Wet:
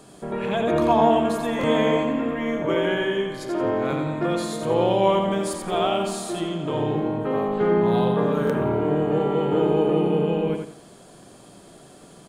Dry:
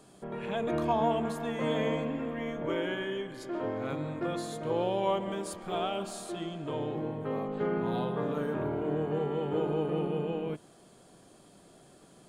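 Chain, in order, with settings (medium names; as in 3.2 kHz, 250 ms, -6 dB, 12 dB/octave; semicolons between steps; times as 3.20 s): on a send: feedback delay 87 ms, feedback 29%, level -5.5 dB; on the sum: buffer glitch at 1.59/8.45 s, samples 1024, times 1; trim +8.5 dB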